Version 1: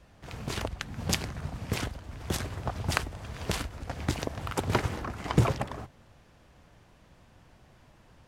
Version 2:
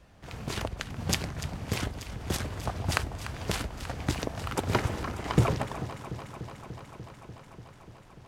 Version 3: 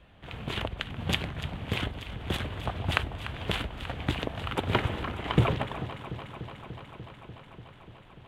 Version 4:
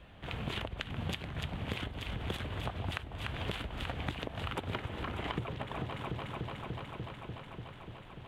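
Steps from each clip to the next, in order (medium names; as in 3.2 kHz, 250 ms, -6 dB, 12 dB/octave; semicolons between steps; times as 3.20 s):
echo whose repeats swap between lows and highs 147 ms, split 850 Hz, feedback 89%, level -12 dB
resonant high shelf 4.2 kHz -8.5 dB, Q 3
compression 16:1, threshold -35 dBFS, peak gain reduction 19.5 dB; trim +2 dB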